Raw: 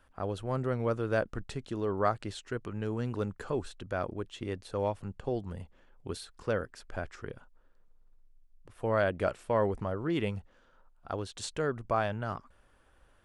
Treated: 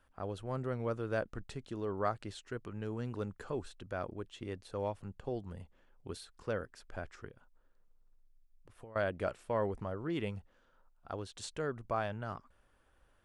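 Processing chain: 7.27–8.96 s: compression 10:1, threshold -44 dBFS, peak gain reduction 19.5 dB; trim -5.5 dB

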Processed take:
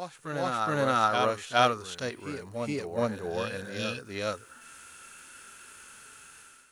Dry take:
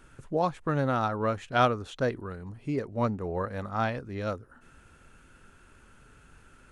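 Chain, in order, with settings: spectral replace 3.59–3.97 s, 490–2400 Hz after; tilt EQ +4.5 dB/octave; harmonic-percussive split percussive -13 dB; level rider gain up to 12 dB; reverse echo 417 ms -5.5 dB; trim -4.5 dB

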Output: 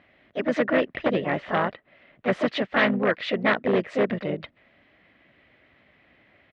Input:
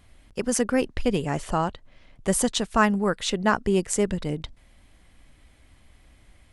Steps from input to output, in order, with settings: harmony voices -7 st -12 dB, +3 st -10 dB, +4 st -6 dB; wavefolder -15 dBFS; cabinet simulation 190–3200 Hz, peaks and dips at 600 Hz +6 dB, 900 Hz -4 dB, 1.9 kHz +8 dB

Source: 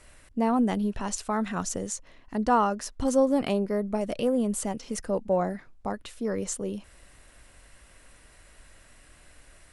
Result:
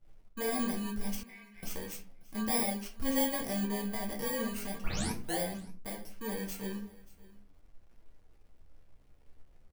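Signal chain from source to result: bit-reversed sample order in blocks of 32 samples; 4.81 s: tape start 0.57 s; simulated room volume 30 m³, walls mixed, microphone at 0.52 m; hysteresis with a dead band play -43.5 dBFS; flange 0.38 Hz, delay 8.4 ms, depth 7.6 ms, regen +41%; 1.23–1.63 s: band-pass filter 2.2 kHz, Q 6.2; delay 582 ms -21.5 dB; trim -7 dB

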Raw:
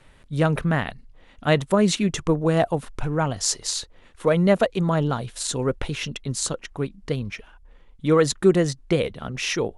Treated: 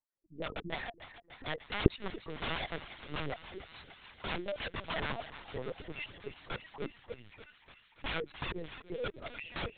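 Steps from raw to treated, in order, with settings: spectral contrast enhancement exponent 2.1; gate with hold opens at -45 dBFS; resonant low shelf 240 Hz -6.5 dB, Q 3; peak limiter -17 dBFS, peak gain reduction 12 dB; wah-wah 2.7 Hz 320–1400 Hz, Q 2.9; integer overflow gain 31.5 dB; on a send: thinning echo 293 ms, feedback 82%, high-pass 580 Hz, level -12 dB; on the sum: LPC vocoder at 8 kHz pitch kept; trim +2 dB

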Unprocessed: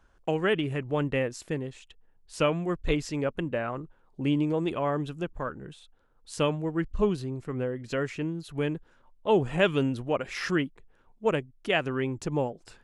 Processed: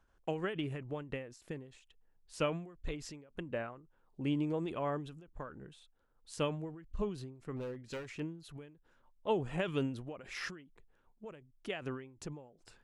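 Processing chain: 7.56–8.20 s: overload inside the chain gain 29.5 dB; endings held to a fixed fall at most 100 dB/s; trim -7.5 dB

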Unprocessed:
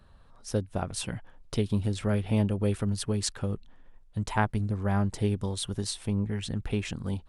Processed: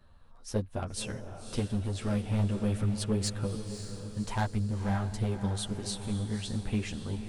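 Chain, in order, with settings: overload inside the chain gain 21.5 dB; chorus voices 4, 1.2 Hz, delay 11 ms, depth 3 ms; echo that smears into a reverb 553 ms, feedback 51%, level -9 dB

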